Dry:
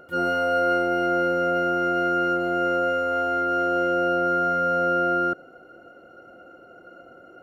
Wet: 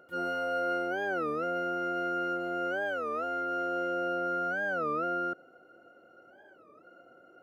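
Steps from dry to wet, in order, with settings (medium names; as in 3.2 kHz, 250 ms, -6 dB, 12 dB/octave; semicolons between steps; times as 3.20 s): high-pass 160 Hz 6 dB/octave; warped record 33 1/3 rpm, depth 250 cents; trim -9 dB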